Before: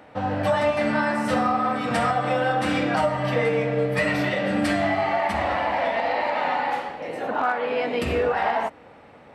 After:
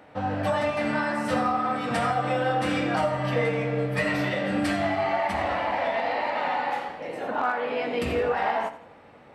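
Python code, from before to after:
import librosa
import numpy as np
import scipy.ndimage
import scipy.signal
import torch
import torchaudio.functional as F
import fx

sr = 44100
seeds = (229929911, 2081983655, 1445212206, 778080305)

y = fx.doubler(x, sr, ms=21.0, db=-12.0)
y = fx.echo_feedback(y, sr, ms=84, feedback_pct=37, wet_db=-14.0)
y = y * 10.0 ** (-3.0 / 20.0)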